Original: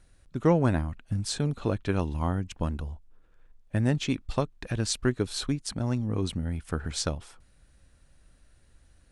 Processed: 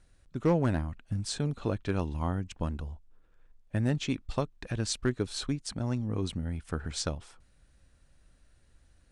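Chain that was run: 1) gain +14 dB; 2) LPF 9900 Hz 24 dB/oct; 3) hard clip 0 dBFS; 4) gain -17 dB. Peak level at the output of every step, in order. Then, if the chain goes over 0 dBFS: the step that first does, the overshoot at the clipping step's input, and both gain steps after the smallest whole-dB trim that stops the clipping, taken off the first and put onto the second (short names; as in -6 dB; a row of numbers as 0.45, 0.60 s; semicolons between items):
+4.5, +4.5, 0.0, -17.0 dBFS; step 1, 4.5 dB; step 1 +9 dB, step 4 -12 dB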